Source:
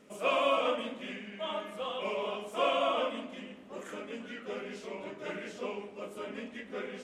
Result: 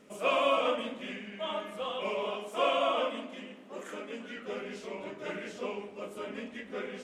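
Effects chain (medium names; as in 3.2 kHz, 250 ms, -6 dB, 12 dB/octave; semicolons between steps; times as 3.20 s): 2.32–4.37 s: high-pass 190 Hz 12 dB/octave; trim +1 dB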